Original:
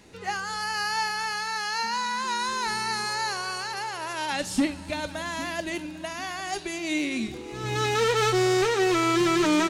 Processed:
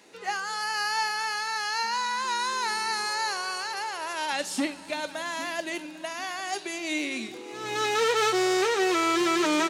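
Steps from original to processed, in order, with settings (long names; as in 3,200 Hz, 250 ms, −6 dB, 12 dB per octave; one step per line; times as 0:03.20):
high-pass filter 340 Hz 12 dB per octave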